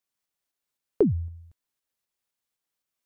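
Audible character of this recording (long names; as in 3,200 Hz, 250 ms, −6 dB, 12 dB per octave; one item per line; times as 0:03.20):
tremolo saw up 3.9 Hz, depth 35%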